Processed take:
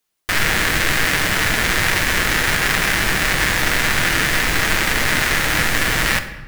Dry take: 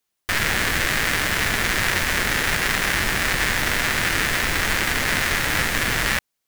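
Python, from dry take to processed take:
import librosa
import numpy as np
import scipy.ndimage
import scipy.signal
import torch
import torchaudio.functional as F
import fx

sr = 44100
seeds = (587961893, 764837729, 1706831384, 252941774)

y = fx.room_shoebox(x, sr, seeds[0], volume_m3=720.0, walls='mixed', distance_m=0.57)
y = F.gain(torch.from_numpy(y), 3.0).numpy()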